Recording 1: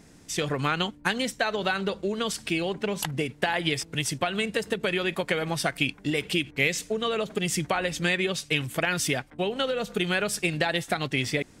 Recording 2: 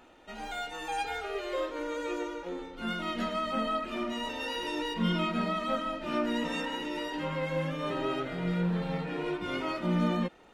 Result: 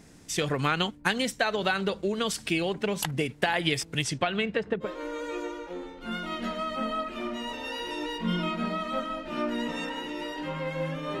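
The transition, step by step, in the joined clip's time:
recording 1
4.02–4.92 LPF 8300 Hz -> 1100 Hz
4.86 switch to recording 2 from 1.62 s, crossfade 0.12 s

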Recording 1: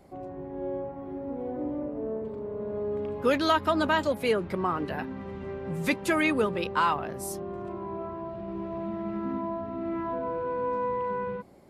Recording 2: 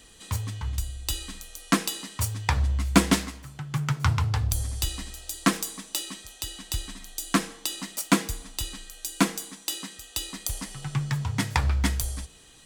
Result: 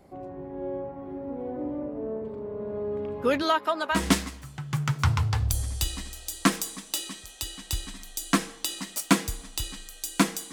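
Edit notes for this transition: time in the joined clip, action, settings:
recording 1
3.42–4.07 HPF 280 Hz -> 950 Hz
3.99 switch to recording 2 from 3 s, crossfade 0.16 s

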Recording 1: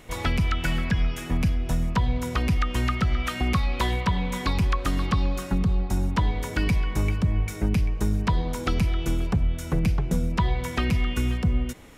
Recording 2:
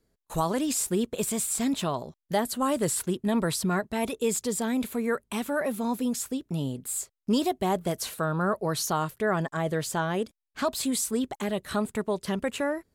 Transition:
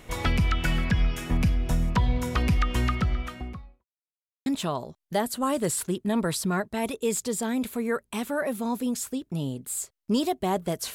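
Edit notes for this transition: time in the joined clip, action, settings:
recording 1
2.73–3.85 studio fade out
3.85–4.46 mute
4.46 switch to recording 2 from 1.65 s

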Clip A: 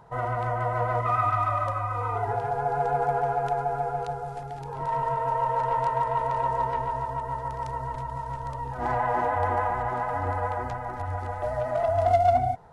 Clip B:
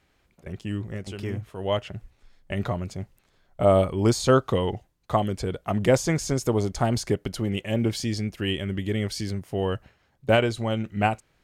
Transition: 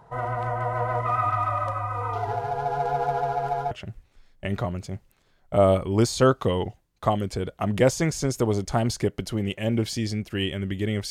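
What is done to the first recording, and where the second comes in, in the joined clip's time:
clip A
2.13–3.71 median filter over 15 samples
3.71 switch to clip B from 1.78 s

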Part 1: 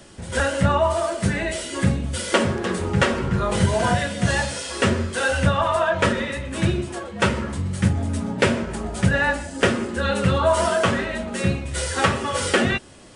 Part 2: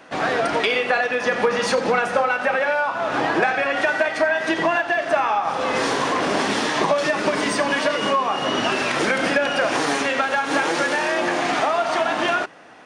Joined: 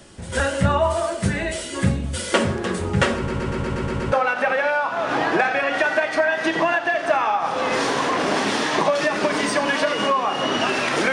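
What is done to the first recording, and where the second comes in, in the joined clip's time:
part 1
3.16 stutter in place 0.12 s, 8 plays
4.12 switch to part 2 from 2.15 s

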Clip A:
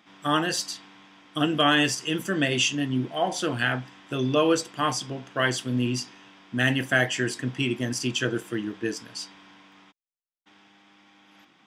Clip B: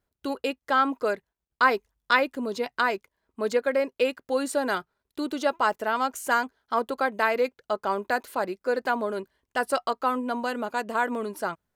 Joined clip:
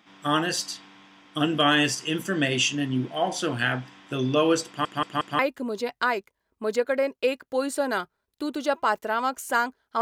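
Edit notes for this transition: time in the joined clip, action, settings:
clip A
4.67 stutter in place 0.18 s, 4 plays
5.39 switch to clip B from 2.16 s

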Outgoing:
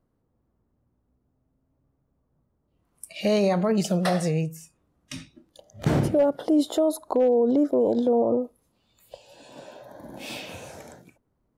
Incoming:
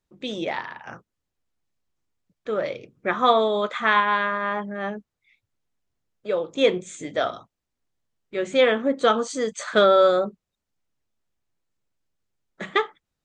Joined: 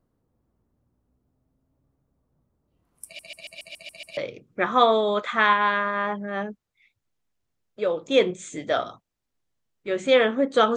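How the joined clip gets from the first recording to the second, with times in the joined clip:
outgoing
3.05 stutter in place 0.14 s, 8 plays
4.17 switch to incoming from 2.64 s

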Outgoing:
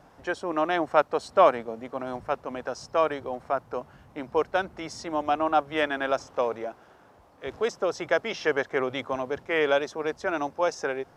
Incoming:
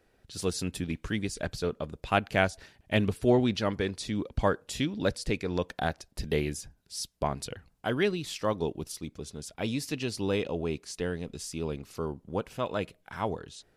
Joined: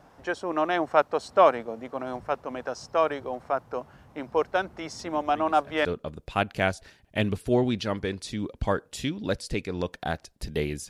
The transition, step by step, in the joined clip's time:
outgoing
4.99 add incoming from 0.75 s 0.86 s -15 dB
5.85 switch to incoming from 1.61 s

